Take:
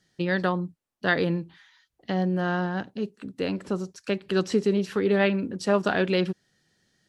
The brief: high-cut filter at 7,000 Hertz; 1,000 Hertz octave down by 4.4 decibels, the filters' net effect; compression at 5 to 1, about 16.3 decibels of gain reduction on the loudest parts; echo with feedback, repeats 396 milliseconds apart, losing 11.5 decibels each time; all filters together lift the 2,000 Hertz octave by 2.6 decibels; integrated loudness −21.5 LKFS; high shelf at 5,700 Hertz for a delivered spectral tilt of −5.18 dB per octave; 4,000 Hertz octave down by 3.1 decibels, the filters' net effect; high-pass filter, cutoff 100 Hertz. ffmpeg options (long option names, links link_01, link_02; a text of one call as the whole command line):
ffmpeg -i in.wav -af "highpass=100,lowpass=7000,equalizer=frequency=1000:width_type=o:gain=-8.5,equalizer=frequency=2000:width_type=o:gain=7.5,equalizer=frequency=4000:width_type=o:gain=-9,highshelf=frequency=5700:gain=6,acompressor=threshold=-37dB:ratio=5,aecho=1:1:396|792|1188:0.266|0.0718|0.0194,volume=19dB" out.wav